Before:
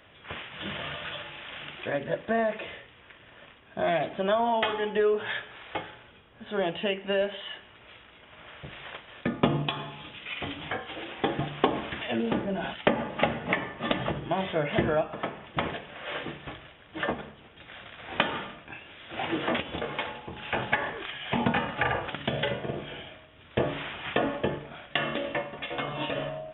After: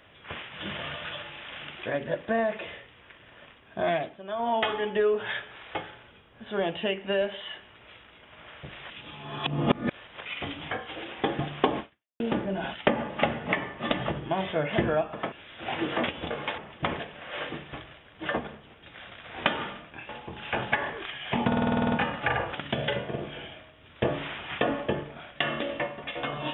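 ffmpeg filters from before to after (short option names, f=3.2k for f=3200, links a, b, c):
-filter_complex "[0:a]asplit=18[a][b][c][d][e][f][g][h][i][j][k][l][m][n][o][p][q][r];[a]atrim=end=4.18,asetpts=PTS-STARTPTS,afade=t=out:st=3.92:d=0.26:silence=0.188365[s];[b]atrim=start=4.18:end=4.27,asetpts=PTS-STARTPTS,volume=-14.5dB[t];[c]atrim=start=4.27:end=8.902,asetpts=PTS-STARTPTS,afade=t=in:d=0.26:silence=0.188365[u];[d]atrim=start=8.898:end=10.252,asetpts=PTS-STARTPTS,areverse[v];[e]atrim=start=10.248:end=12.2,asetpts=PTS-STARTPTS,afade=t=out:st=1.552:d=0.4:c=exp[w];[f]atrim=start=12.2:end=15.322,asetpts=PTS-STARTPTS,afade=t=in:d=0.004:c=hsin[x];[g]atrim=start=18.828:end=20.092[y];[h]atrim=start=15.318:end=18.832[z];[i]atrim=start=20.088:end=21.522[aa];[j]atrim=start=21.468:end=21.522[ab];[k]atrim=start=21.468:end=21.522[ac];[l]atrim=start=21.468:end=21.522[ad];[m]atrim=start=21.468:end=21.522[ae];[n]atrim=start=21.468:end=21.522[af];[o]atrim=start=21.468:end=21.522[ag];[p]atrim=start=21.468:end=21.522[ah];[q]atrim=start=21.468:end=21.522[ai];[r]atrim=start=21.468[aj];[s][t][u]concat=n=3:v=0:a=1[ak];[ak][v]acrossfade=d=0.004:c1=hsin:c2=hsin[al];[w][x]concat=n=2:v=0:a=1[am];[al][am]acrossfade=d=0.004:c1=hsin:c2=hsin[an];[an][y]acrossfade=d=0.004:c1=hsin:c2=hsin[ao];[ao][z]acrossfade=d=0.004:c1=hsin:c2=hsin[ap];[ap][aa]acrossfade=d=0.004:c1=hsin:c2=hsin[aq];[aq][ab]acrossfade=d=0.004:c1=hsin:c2=hsin[ar];[ar][ac]acrossfade=d=0.004:c1=hsin:c2=hsin[as];[as][ad]acrossfade=d=0.004:c1=hsin:c2=hsin[at];[at][ae]acrossfade=d=0.004:c1=hsin:c2=hsin[au];[au][af]acrossfade=d=0.004:c1=hsin:c2=hsin[av];[av][ag]acrossfade=d=0.004:c1=hsin:c2=hsin[aw];[aw][ah]acrossfade=d=0.004:c1=hsin:c2=hsin[ax];[ax][ai]acrossfade=d=0.004:c1=hsin:c2=hsin[ay];[ay][aj]acrossfade=d=0.004:c1=hsin:c2=hsin"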